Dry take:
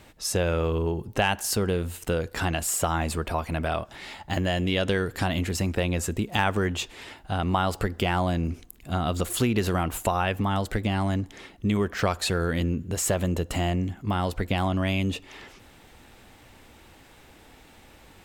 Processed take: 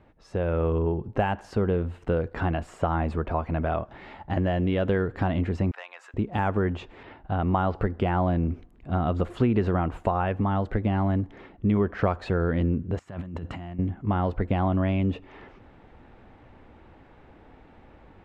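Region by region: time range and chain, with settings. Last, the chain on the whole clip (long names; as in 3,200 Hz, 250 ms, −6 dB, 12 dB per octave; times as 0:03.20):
0:05.71–0:06.14: high-pass filter 940 Hz 24 dB per octave + saturating transformer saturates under 3,800 Hz
0:07.03–0:07.75: noise gate with hold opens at −37 dBFS, closes at −46 dBFS + low-pass filter 4,900 Hz 24 dB per octave
0:12.99–0:13.79: high-pass filter 97 Hz + parametric band 480 Hz −11 dB 1.1 octaves + compressor whose output falls as the input rises −37 dBFS
whole clip: automatic gain control gain up to 6 dB; Bessel low-pass filter 1,200 Hz, order 2; de-essing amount 85%; level −4 dB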